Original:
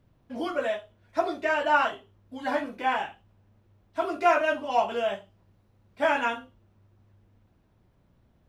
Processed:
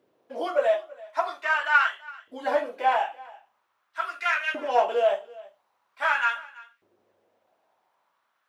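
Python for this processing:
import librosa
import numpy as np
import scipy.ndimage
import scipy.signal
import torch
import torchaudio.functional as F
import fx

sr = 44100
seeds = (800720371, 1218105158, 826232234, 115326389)

y = fx.diode_clip(x, sr, knee_db=-17.5)
y = fx.filter_lfo_highpass(y, sr, shape='saw_up', hz=0.44, low_hz=380.0, high_hz=2100.0, q=2.6)
y = y + 10.0 ** (-21.5 / 20.0) * np.pad(y, (int(332 * sr / 1000.0), 0))[:len(y)]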